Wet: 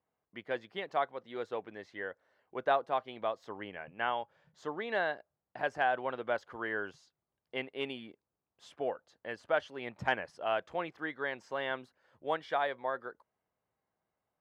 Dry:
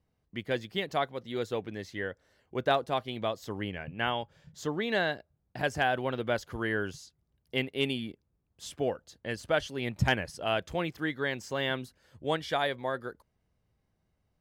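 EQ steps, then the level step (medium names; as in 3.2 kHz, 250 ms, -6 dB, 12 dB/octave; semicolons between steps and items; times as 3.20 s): band-pass filter 960 Hz, Q 0.91; 0.0 dB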